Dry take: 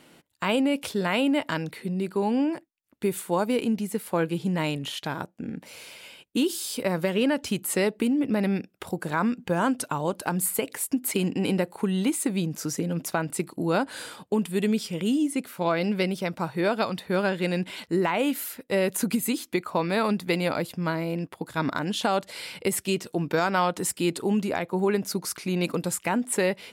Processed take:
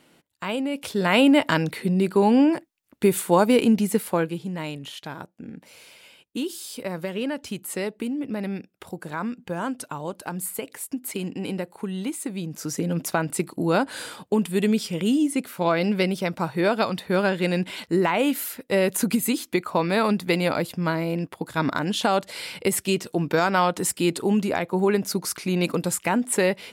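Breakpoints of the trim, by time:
0.71 s -3.5 dB
1.18 s +7 dB
3.98 s +7 dB
4.45 s -4.5 dB
12.39 s -4.5 dB
12.88 s +3 dB

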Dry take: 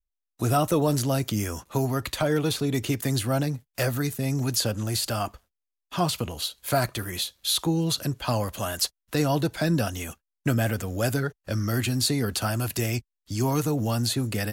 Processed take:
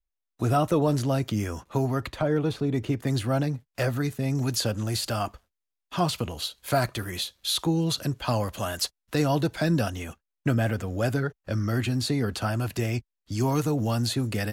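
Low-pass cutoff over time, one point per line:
low-pass 6 dB/octave
2.9 kHz
from 2.07 s 1.2 kHz
from 3.07 s 3.1 kHz
from 4.35 s 6.3 kHz
from 9.90 s 2.8 kHz
from 13.32 s 5.7 kHz

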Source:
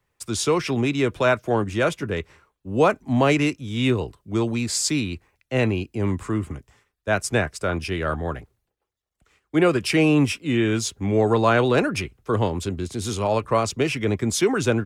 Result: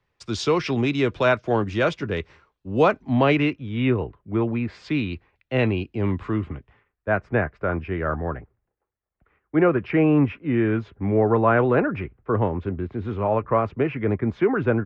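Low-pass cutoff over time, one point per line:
low-pass 24 dB/octave
2.77 s 5.3 kHz
4.00 s 2.3 kHz
4.70 s 2.3 kHz
5.13 s 3.8 kHz
6.38 s 3.8 kHz
7.10 s 2 kHz

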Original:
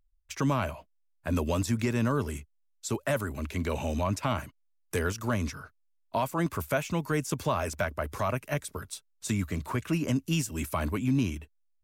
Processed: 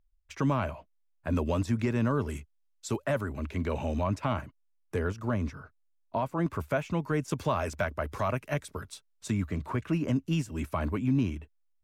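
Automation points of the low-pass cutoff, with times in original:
low-pass 6 dB/octave
2.2 kHz
from 2.29 s 5.1 kHz
from 3.05 s 2 kHz
from 4.41 s 1.1 kHz
from 6.46 s 1.8 kHz
from 7.28 s 4 kHz
from 9.28 s 1.8 kHz

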